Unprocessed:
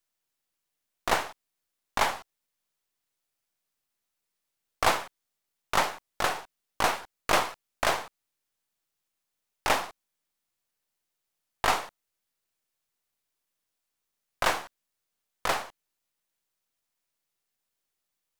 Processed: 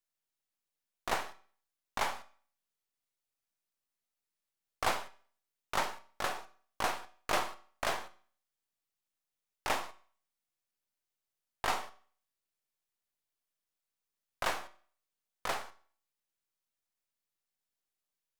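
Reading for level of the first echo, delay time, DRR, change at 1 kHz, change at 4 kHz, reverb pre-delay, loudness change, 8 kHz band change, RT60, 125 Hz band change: none, none, 11.0 dB, -7.5 dB, -7.5 dB, 5 ms, -7.5 dB, -7.5 dB, 0.45 s, -8.0 dB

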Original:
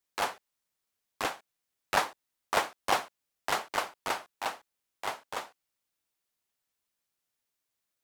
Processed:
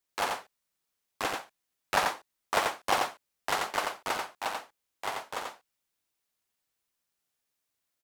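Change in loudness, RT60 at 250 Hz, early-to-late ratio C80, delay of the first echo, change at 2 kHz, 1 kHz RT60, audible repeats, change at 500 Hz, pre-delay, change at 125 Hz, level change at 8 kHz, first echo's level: +1.0 dB, none, none, 88 ms, +1.5 dB, none, 1, +1.5 dB, none, +1.5 dB, +1.5 dB, -4.0 dB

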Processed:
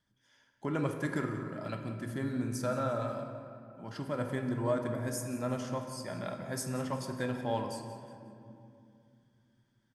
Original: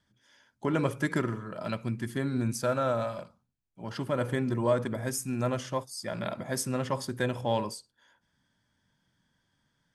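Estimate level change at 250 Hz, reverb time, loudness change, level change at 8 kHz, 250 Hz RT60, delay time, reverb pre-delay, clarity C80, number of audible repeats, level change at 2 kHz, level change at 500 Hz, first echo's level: -3.5 dB, 2.6 s, -4.5 dB, -5.5 dB, 3.7 s, 0.18 s, 4 ms, 7.0 dB, 2, -5.0 dB, -4.5 dB, -15.0 dB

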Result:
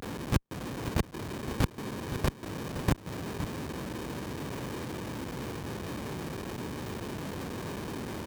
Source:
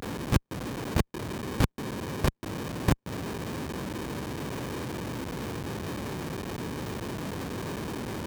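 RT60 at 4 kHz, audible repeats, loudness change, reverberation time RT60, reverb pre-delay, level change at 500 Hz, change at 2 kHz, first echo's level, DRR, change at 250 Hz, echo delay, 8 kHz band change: none, 1, -2.5 dB, none, none, -2.5 dB, -2.5 dB, -11.0 dB, none, -2.5 dB, 0.517 s, -2.5 dB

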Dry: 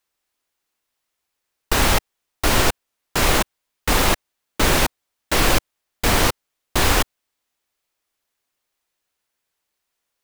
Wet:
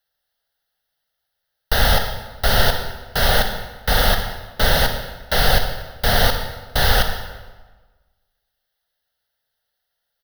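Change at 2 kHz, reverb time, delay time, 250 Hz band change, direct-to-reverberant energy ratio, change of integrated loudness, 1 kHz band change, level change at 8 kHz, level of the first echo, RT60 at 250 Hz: +1.5 dB, 1.3 s, 60 ms, -4.5 dB, 5.5 dB, +0.5 dB, +0.5 dB, -5.5 dB, -14.5 dB, 1.4 s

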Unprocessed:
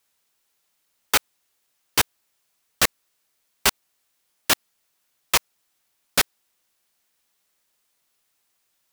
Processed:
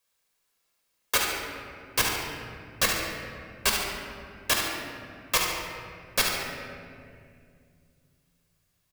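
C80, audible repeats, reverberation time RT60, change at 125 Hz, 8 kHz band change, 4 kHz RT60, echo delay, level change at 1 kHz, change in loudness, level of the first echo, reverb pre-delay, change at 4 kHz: 2.5 dB, 1, 2.3 s, 0.0 dB, -3.5 dB, 1.3 s, 71 ms, -2.5 dB, -5.0 dB, -7.0 dB, 4 ms, -3.0 dB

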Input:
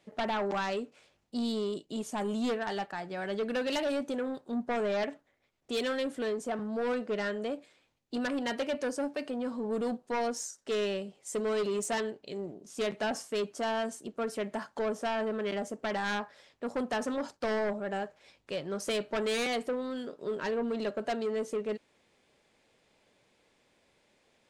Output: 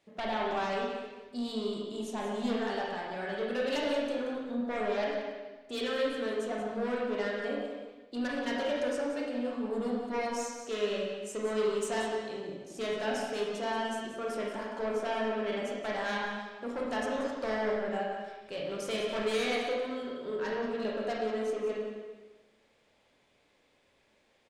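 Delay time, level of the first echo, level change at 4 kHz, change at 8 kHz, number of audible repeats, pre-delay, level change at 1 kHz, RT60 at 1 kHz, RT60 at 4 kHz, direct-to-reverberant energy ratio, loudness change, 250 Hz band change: 0.18 s, -10.5 dB, 0.0 dB, -3.5 dB, 1, 23 ms, +0.5 dB, 1.2 s, 1.2 s, -3.5 dB, 0.0 dB, -1.0 dB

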